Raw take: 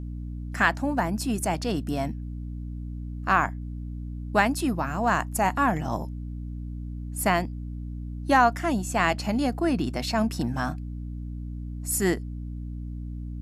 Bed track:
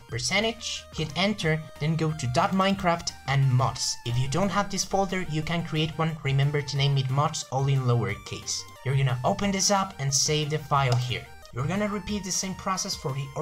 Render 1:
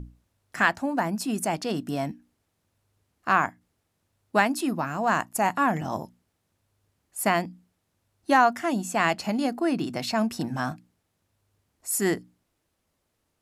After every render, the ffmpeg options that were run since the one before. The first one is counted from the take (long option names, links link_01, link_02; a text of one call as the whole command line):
ffmpeg -i in.wav -af "bandreject=frequency=60:width_type=h:width=6,bandreject=frequency=120:width_type=h:width=6,bandreject=frequency=180:width_type=h:width=6,bandreject=frequency=240:width_type=h:width=6,bandreject=frequency=300:width_type=h:width=6" out.wav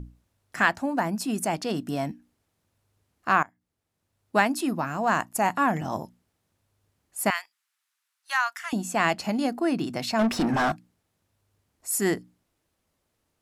ffmpeg -i in.wav -filter_complex "[0:a]asettb=1/sr,asplit=3[link_01][link_02][link_03];[link_01]atrim=end=7.304[link_04];[link_02]atrim=start=7.3:end=8.73,asetpts=PTS-STARTPTS,afade=type=in:duration=0.004:curve=qsin,afade=type=out:start_time=1.426:duration=0.004:curve=qsin,highpass=frequency=1200:width=0.5412,highpass=frequency=1200:width=1.3066[link_05];[link_03]atrim=start=8.726[link_06];[link_04][link_05]acrossfade=duration=0.004:curve1=hsin:curve2=qsin[link_07];[link_07][link_06]acrossfade=duration=0.004:curve1=qsin:curve2=hsin,asettb=1/sr,asplit=3[link_08][link_09][link_10];[link_08]atrim=end=10.194[link_11];[link_09]atrim=start=10.19:end=10.72,asetpts=PTS-STARTPTS,afade=type=in:duration=0.004:curve=qsin,afade=type=out:start_time=0.526:duration=0.004:curve=qsin,asplit=2[link_12][link_13];[link_13]highpass=frequency=720:poles=1,volume=27dB,asoftclip=type=tanh:threshold=-15dB[link_14];[link_12][link_14]amix=inputs=2:normalize=0,lowpass=frequency=1800:poles=1,volume=-6dB[link_15];[link_10]atrim=start=10.716[link_16];[link_11][link_15]acrossfade=duration=0.004:curve1=hsin:curve2=qsin[link_17];[link_17][link_16]acrossfade=duration=0.004:curve1=qsin:curve2=hsin,asplit=2[link_18][link_19];[link_18]atrim=end=3.43,asetpts=PTS-STARTPTS,afade=type=out:start_time=3.426:duration=0.004:curve=hsin:silence=0.0749894[link_20];[link_19]atrim=start=3.43,asetpts=PTS-STARTPTS,afade=type=in:duration=0.97:silence=0.0749894[link_21];[link_20][link_21]concat=n=2:v=0:a=1" out.wav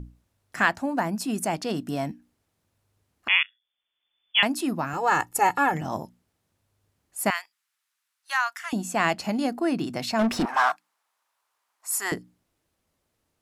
ffmpeg -i in.wav -filter_complex "[0:a]asettb=1/sr,asplit=3[link_01][link_02][link_03];[link_01]atrim=end=3.284[link_04];[link_02]atrim=start=3.28:end=4.43,asetpts=PTS-STARTPTS,afade=type=in:duration=0.004:curve=qsin,afade=type=out:start_time=1.146:duration=0.004:curve=qsin,lowpass=frequency=3100:width_type=q:width=0.5098,lowpass=frequency=3100:width_type=q:width=0.6013,lowpass=frequency=3100:width_type=q:width=0.9,lowpass=frequency=3100:width_type=q:width=2.563,afreqshift=-3600[link_05];[link_03]atrim=start=4.426[link_06];[link_04][link_05]acrossfade=duration=0.004:curve1=hsin:curve2=qsin[link_07];[link_07][link_06]acrossfade=duration=0.004:curve1=qsin:curve2=hsin,asettb=1/sr,asplit=3[link_08][link_09][link_10];[link_08]atrim=end=4.934[link_11];[link_09]atrim=start=4.93:end=5.74,asetpts=PTS-STARTPTS,afade=type=in:duration=0.004:curve=qsin,afade=type=out:start_time=0.806:duration=0.004:curve=qsin,aecho=1:1:2.3:0.96,atrim=end_sample=35721[link_12];[link_10]atrim=start=5.736[link_13];[link_11][link_12]acrossfade=duration=0.004:curve1=hsin:curve2=qsin[link_14];[link_14][link_13]acrossfade=duration=0.004:curve1=qsin:curve2=hsin,asettb=1/sr,asplit=3[link_15][link_16][link_17];[link_15]atrim=end=10.454[link_18];[link_16]atrim=start=10.45:end=12.12,asetpts=PTS-STARTPTS,afade=type=in:duration=0.004:curve=qsin,afade=type=out:start_time=1.666:duration=0.004:curve=qsin,highpass=frequency=1000:width_type=q:width=2.4[link_19];[link_17]atrim=start=12.116[link_20];[link_18][link_19]acrossfade=duration=0.004:curve1=hsin:curve2=qsin[link_21];[link_21][link_20]acrossfade=duration=0.004:curve1=qsin:curve2=hsin" out.wav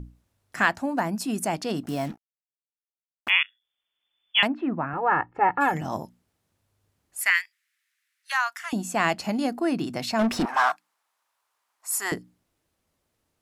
ffmpeg -i in.wav -filter_complex "[0:a]asplit=3[link_01][link_02][link_03];[link_01]afade=type=out:start_time=1.83:duration=0.02[link_04];[link_02]acrusher=bits=6:mix=0:aa=0.5,afade=type=in:start_time=1.83:duration=0.02,afade=type=out:start_time=3.29:duration=0.02[link_05];[link_03]afade=type=in:start_time=3.29:duration=0.02[link_06];[link_04][link_05][link_06]amix=inputs=3:normalize=0,asplit=3[link_07][link_08][link_09];[link_07]afade=type=out:start_time=4.46:duration=0.02[link_10];[link_08]lowpass=frequency=2100:width=0.5412,lowpass=frequency=2100:width=1.3066,afade=type=in:start_time=4.46:duration=0.02,afade=type=out:start_time=5.6:duration=0.02[link_11];[link_09]afade=type=in:start_time=5.6:duration=0.02[link_12];[link_10][link_11][link_12]amix=inputs=3:normalize=0,asettb=1/sr,asplit=3[link_13][link_14][link_15];[link_13]atrim=end=7.214[link_16];[link_14]atrim=start=7.21:end=8.32,asetpts=PTS-STARTPTS,afade=type=in:duration=0.004:curve=qsin,afade=type=out:start_time=1.106:duration=0.004:curve=qsin,highpass=frequency=1900:width_type=q:width=3.3[link_17];[link_15]atrim=start=8.316[link_18];[link_16][link_17]acrossfade=duration=0.004:curve1=hsin:curve2=qsin[link_19];[link_19][link_18]acrossfade=duration=0.004:curve1=qsin:curve2=hsin" out.wav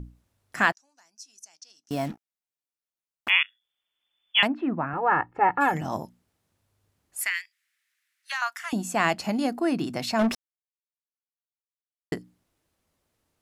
ffmpeg -i in.wav -filter_complex "[0:a]asettb=1/sr,asplit=3[link_01][link_02][link_03];[link_01]atrim=end=0.724[link_04];[link_02]atrim=start=0.72:end=1.91,asetpts=PTS-STARTPTS,afade=type=in:duration=0.004:curve=qsin,afade=type=out:start_time=1.186:duration=0.004:curve=qsin,bandpass=frequency=5900:width_type=q:width=8.9[link_05];[link_03]atrim=start=1.906[link_06];[link_04][link_05]acrossfade=duration=0.004:curve1=hsin:curve2=qsin[link_07];[link_07][link_06]acrossfade=duration=0.004:curve1=qsin:curve2=hsin,asettb=1/sr,asplit=3[link_08][link_09][link_10];[link_08]atrim=end=7.254[link_11];[link_09]atrim=start=7.25:end=8.42,asetpts=PTS-STARTPTS,afade=type=in:duration=0.004:curve=qsin,afade=type=out:start_time=1.166:duration=0.004:curve=qsin,acrossover=split=2100|7700[link_12][link_13][link_14];[link_12]acompressor=threshold=-37dB:ratio=4[link_15];[link_13]acompressor=threshold=-27dB:ratio=4[link_16];[link_14]acompressor=threshold=-59dB:ratio=4[link_17];[link_15][link_16][link_17]amix=inputs=3:normalize=0[link_18];[link_10]atrim=start=8.416[link_19];[link_11][link_18]acrossfade=duration=0.004:curve1=hsin:curve2=qsin[link_20];[link_20][link_19]acrossfade=duration=0.004:curve1=qsin:curve2=hsin,asplit=3[link_21][link_22][link_23];[link_21]atrim=end=10.35,asetpts=PTS-STARTPTS,afade=type=out:start_time=10.346:duration=0.004:curve=hsin[link_24];[link_22]atrim=start=10.35:end=12.12,asetpts=PTS-STARTPTS,volume=0[link_25];[link_23]atrim=start=12.12,asetpts=PTS-STARTPTS,afade=type=in:duration=0.004:curve=hsin[link_26];[link_24][link_25][link_26]concat=n=3:v=0:a=1" out.wav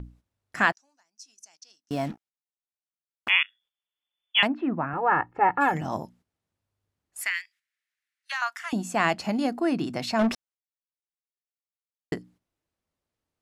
ffmpeg -i in.wav -af "agate=range=-10dB:threshold=-55dB:ratio=16:detection=peak,highshelf=frequency=10000:gain=-10" out.wav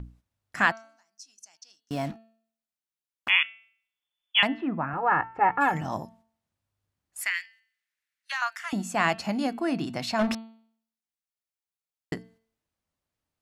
ffmpeg -i in.wav -af "equalizer=frequency=400:width=1.5:gain=-4.5,bandreject=frequency=224.1:width_type=h:width=4,bandreject=frequency=448.2:width_type=h:width=4,bandreject=frequency=672.3:width_type=h:width=4,bandreject=frequency=896.4:width_type=h:width=4,bandreject=frequency=1120.5:width_type=h:width=4,bandreject=frequency=1344.6:width_type=h:width=4,bandreject=frequency=1568.7:width_type=h:width=4,bandreject=frequency=1792.8:width_type=h:width=4,bandreject=frequency=2016.9:width_type=h:width=4,bandreject=frequency=2241:width_type=h:width=4,bandreject=frequency=2465.1:width_type=h:width=4,bandreject=frequency=2689.2:width_type=h:width=4,bandreject=frequency=2913.3:width_type=h:width=4,bandreject=frequency=3137.4:width_type=h:width=4,bandreject=frequency=3361.5:width_type=h:width=4,bandreject=frequency=3585.6:width_type=h:width=4,bandreject=frequency=3809.7:width_type=h:width=4,bandreject=frequency=4033.8:width_type=h:width=4,bandreject=frequency=4257.9:width_type=h:width=4,bandreject=frequency=4482:width_type=h:width=4" out.wav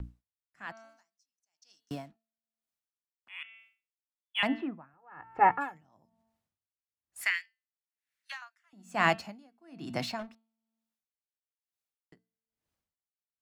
ffmpeg -i in.wav -filter_complex "[0:a]acrossover=split=220|1500|4000[link_01][link_02][link_03][link_04];[link_04]asoftclip=type=tanh:threshold=-39dB[link_05];[link_01][link_02][link_03][link_05]amix=inputs=4:normalize=0,aeval=exprs='val(0)*pow(10,-35*(0.5-0.5*cos(2*PI*1.1*n/s))/20)':channel_layout=same" out.wav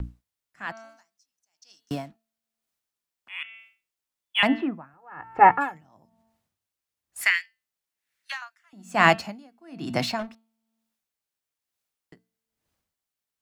ffmpeg -i in.wav -af "volume=8dB" out.wav